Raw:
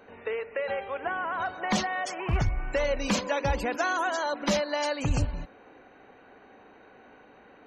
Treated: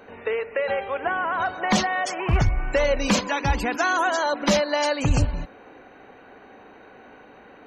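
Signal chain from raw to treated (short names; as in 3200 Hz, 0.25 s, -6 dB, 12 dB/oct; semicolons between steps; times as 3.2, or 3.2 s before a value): 3.2–3.93 bell 550 Hz -11 dB 0.32 oct; gain +6 dB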